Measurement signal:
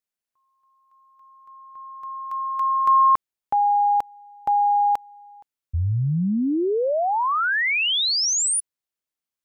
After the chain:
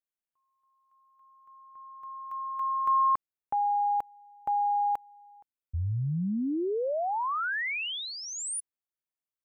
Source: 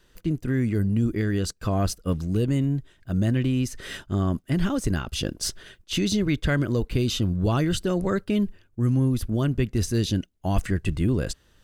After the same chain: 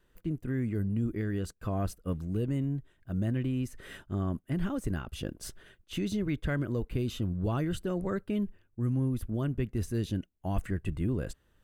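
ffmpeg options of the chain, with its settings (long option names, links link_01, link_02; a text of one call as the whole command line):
ffmpeg -i in.wav -af "equalizer=frequency=5100:width=0.92:gain=-10.5,volume=-7.5dB" out.wav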